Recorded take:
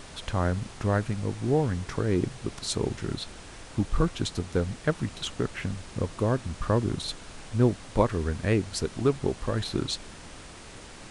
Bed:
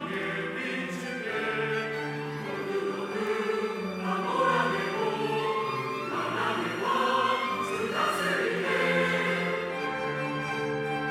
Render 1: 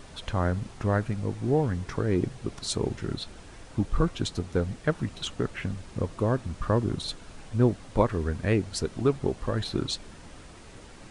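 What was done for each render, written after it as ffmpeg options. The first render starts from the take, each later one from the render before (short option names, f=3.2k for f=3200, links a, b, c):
-af "afftdn=nr=6:nf=-45"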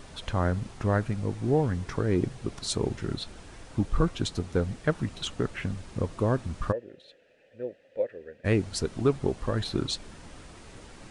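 -filter_complex "[0:a]asplit=3[a][b][c];[a]afade=t=out:st=6.71:d=0.02[d];[b]asplit=3[e][f][g];[e]bandpass=f=530:t=q:w=8,volume=0dB[h];[f]bandpass=f=1.84k:t=q:w=8,volume=-6dB[i];[g]bandpass=f=2.48k:t=q:w=8,volume=-9dB[j];[h][i][j]amix=inputs=3:normalize=0,afade=t=in:st=6.71:d=0.02,afade=t=out:st=8.44:d=0.02[k];[c]afade=t=in:st=8.44:d=0.02[l];[d][k][l]amix=inputs=3:normalize=0"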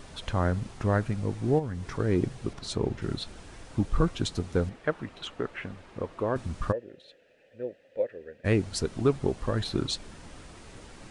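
-filter_complex "[0:a]asplit=3[a][b][c];[a]afade=t=out:st=1.58:d=0.02[d];[b]acompressor=threshold=-32dB:ratio=2.5:attack=3.2:release=140:knee=1:detection=peak,afade=t=in:st=1.58:d=0.02,afade=t=out:st=1.98:d=0.02[e];[c]afade=t=in:st=1.98:d=0.02[f];[d][e][f]amix=inputs=3:normalize=0,asettb=1/sr,asplit=3[g][h][i];[g]atrim=end=2.534[j];[h]atrim=start=2.53:end=3.02,asetpts=PTS-STARTPTS,afade=t=in:d=0.004:c=qsin,afade=t=out:st=0.486:d=0.004:c=qsin,lowpass=f=3.1k:p=1[k];[i]atrim=start=3.016[l];[j][k]acrossfade=d=0.004:c1=hsin:c2=qsin[m];[m][l]acrossfade=d=0.004:c1=qsin:c2=hsin,asettb=1/sr,asplit=3[n][o][p];[n]atrim=end=4.694[q];[o]atrim=start=4.69:end=6.36,asetpts=PTS-STARTPTS,afade=t=in:d=0.004:c=qsin,afade=t=out:st=1.666:d=0.004:c=qsin,bass=f=250:g=-11,treble=f=4k:g=-13[r];[p]atrim=start=6.356[s];[q][r]acrossfade=d=0.004:c1=hsin:c2=qsin[t];[t][s]acrossfade=d=0.004:c1=qsin:c2=hsin"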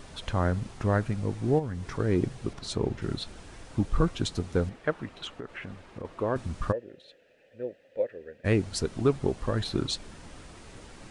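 -filter_complex "[0:a]asettb=1/sr,asplit=3[a][b][c];[a]atrim=end=5.264[d];[b]atrim=start=5.26:end=6.05,asetpts=PTS-STARTPTS,afade=t=in:d=0.004:c=qsin,afade=t=out:st=0.786:d=0.004:c=qsin,acompressor=threshold=-34dB:ratio=6:attack=3.2:release=140:knee=1:detection=peak[e];[c]atrim=start=6.046[f];[d][e]acrossfade=d=0.004:c1=hsin:c2=qsin[g];[g][f]acrossfade=d=0.004:c1=qsin:c2=hsin"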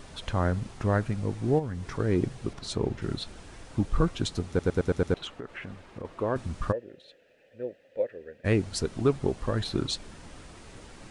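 -filter_complex "[0:a]asplit=7[a][b][c][d][e][f][g];[a]atrim=end=4.592[h];[b]atrim=start=4.478:end=4.592[i];[c]atrim=start=4.478:end=4.592[j];[d]atrim=start=4.478:end=4.592[k];[e]atrim=start=4.478:end=4.592[l];[f]atrim=start=4.478:end=4.592[m];[g]atrim=start=5.138[n];[h][i]acrossfade=d=0.004:c1=hsin:c2=hsin[o];[o][j]acrossfade=d=0.004:c1=hsin:c2=hsin[p];[p][k]acrossfade=d=0.004:c1=hsin:c2=hsin[q];[q][l]acrossfade=d=0.004:c1=hsin:c2=hsin[r];[r][m]acrossfade=d=0.004:c1=hsin:c2=hsin[s];[s][n]acrossfade=d=0.004:c1=hsin:c2=hsin"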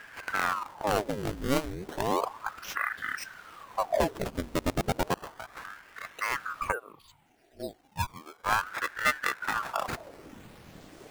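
-af "acrusher=samples=17:mix=1:aa=0.000001:lfo=1:lforange=27.2:lforate=0.25,aeval=exprs='val(0)*sin(2*PI*890*n/s+890*0.85/0.33*sin(2*PI*0.33*n/s))':c=same"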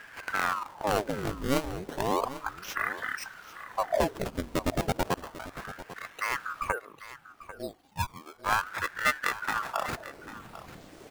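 -af "aecho=1:1:795:0.178"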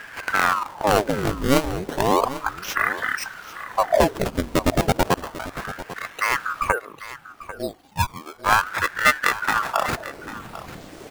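-af "volume=9dB"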